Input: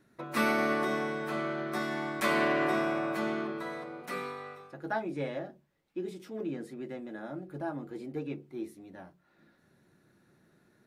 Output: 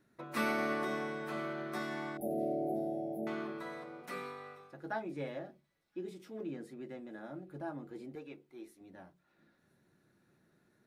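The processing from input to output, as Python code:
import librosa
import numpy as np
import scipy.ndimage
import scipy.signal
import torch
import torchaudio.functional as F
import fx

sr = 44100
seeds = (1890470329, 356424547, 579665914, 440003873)

y = fx.brickwall_bandstop(x, sr, low_hz=840.0, high_hz=10000.0, at=(2.17, 3.27))
y = fx.peak_eq(y, sr, hz=130.0, db=-12.5, octaves=2.6, at=(8.15, 8.81))
y = fx.echo_wet_highpass(y, sr, ms=1019, feedback_pct=57, hz=3500.0, wet_db=-23.5)
y = F.gain(torch.from_numpy(y), -5.5).numpy()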